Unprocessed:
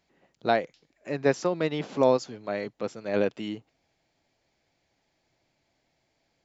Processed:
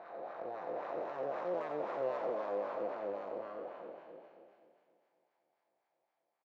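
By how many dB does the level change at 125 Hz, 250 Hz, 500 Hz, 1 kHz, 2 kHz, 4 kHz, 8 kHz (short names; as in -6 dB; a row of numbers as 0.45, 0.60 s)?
-23.5 dB, -17.5 dB, -10.0 dB, -8.0 dB, -15.0 dB, under -20 dB, n/a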